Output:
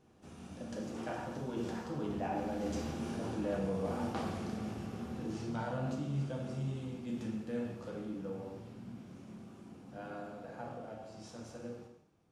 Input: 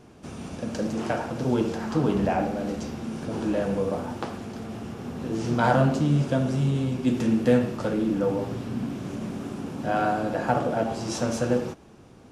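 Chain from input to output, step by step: Doppler pass-by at 3.39 s, 10 m/s, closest 2.8 m; reverse; compression 10:1, threshold -41 dBFS, peak gain reduction 19 dB; reverse; gated-style reverb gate 290 ms falling, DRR 1.5 dB; trim +5.5 dB

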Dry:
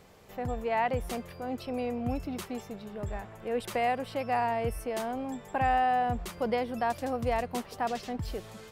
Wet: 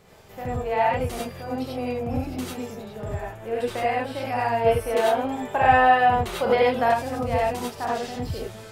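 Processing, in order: 3.62–4.04 s: treble shelf 4.6 kHz -7 dB; gated-style reverb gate 120 ms rising, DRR -4.5 dB; 4.66–6.94 s: time-frequency box 350–4400 Hz +6 dB

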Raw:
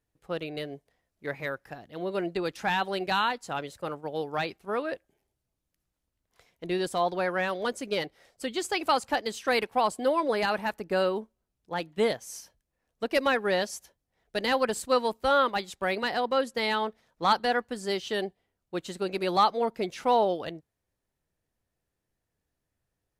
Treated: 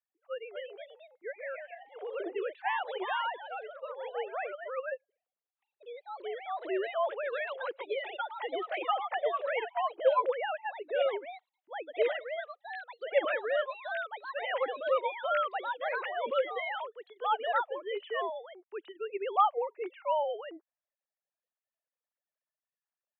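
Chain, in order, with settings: formants replaced by sine waves; ever faster or slower copies 276 ms, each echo +2 st, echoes 2, each echo -6 dB; trim -5.5 dB

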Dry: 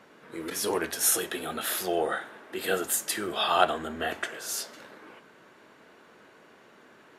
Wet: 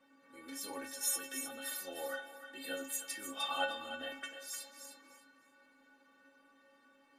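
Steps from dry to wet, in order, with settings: inharmonic resonator 270 Hz, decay 0.32 s, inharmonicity 0.008; on a send: thinning echo 305 ms, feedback 22%, high-pass 960 Hz, level -8.5 dB; on the sum: trim +3 dB

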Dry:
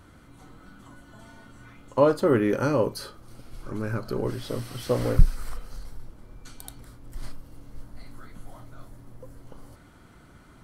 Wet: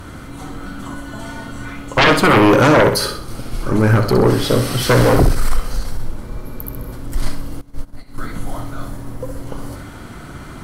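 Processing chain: sine folder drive 18 dB, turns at -3.5 dBFS; 6.33–6.90 s: spectral replace 300–11000 Hz before; on a send: flutter echo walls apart 11 m, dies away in 0.48 s; 7.61–8.18 s: on the sum: upward expansion 2.5:1, over -22 dBFS; trim -4 dB

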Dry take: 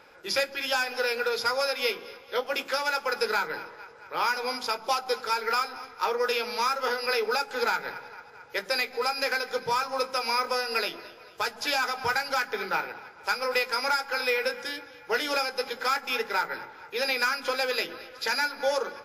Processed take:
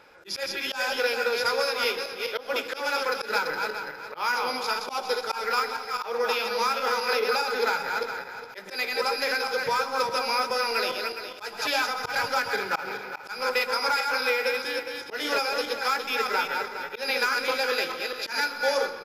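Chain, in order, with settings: backward echo that repeats 206 ms, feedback 50%, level -4 dB; delay 125 ms -16 dB; slow attack 120 ms

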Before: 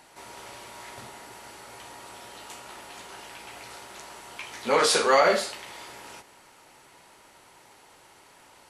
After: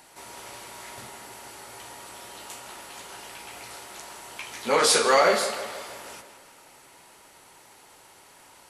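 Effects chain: treble shelf 7.5 kHz +8 dB; on a send: tape echo 160 ms, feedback 59%, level -10 dB, low-pass 4.6 kHz

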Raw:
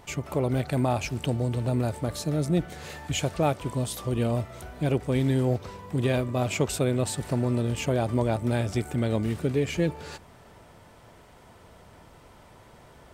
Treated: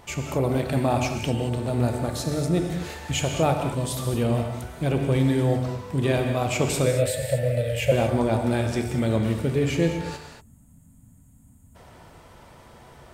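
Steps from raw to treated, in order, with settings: 6.86–7.92 s: FFT filter 130 Hz 0 dB, 330 Hz -27 dB, 550 Hz +13 dB, 1 kHz -25 dB, 1.8 kHz +6 dB, 3.6 kHz 0 dB, 6.1 kHz -6 dB, 12 kHz +5 dB; gated-style reverb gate 260 ms flat, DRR 3.5 dB; 10.41–11.76 s: time-frequency box 300–6500 Hz -25 dB; de-hum 50.38 Hz, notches 9; trim +2 dB

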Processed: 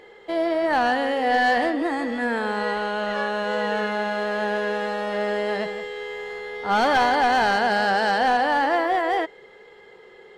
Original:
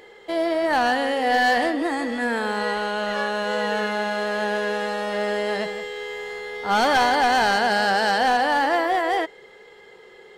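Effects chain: treble shelf 4.8 kHz -9.5 dB

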